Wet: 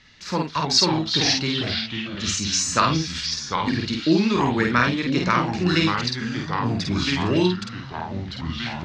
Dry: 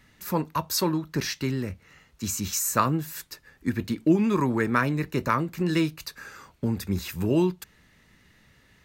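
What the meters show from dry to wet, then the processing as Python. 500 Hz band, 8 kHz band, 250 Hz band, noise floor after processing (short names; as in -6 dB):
+3.0 dB, +5.0 dB, +3.5 dB, -36 dBFS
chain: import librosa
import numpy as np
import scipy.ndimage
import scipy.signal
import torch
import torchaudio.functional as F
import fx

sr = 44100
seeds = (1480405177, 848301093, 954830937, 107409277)

y = scipy.signal.sosfilt(scipy.signal.butter(4, 5800.0, 'lowpass', fs=sr, output='sos'), x)
y = fx.peak_eq(y, sr, hz=4500.0, db=12.0, octaves=2.1)
y = fx.echo_pitch(y, sr, ms=227, semitones=-3, count=3, db_per_echo=-6.0)
y = fx.doubler(y, sr, ms=50.0, db=-3.0)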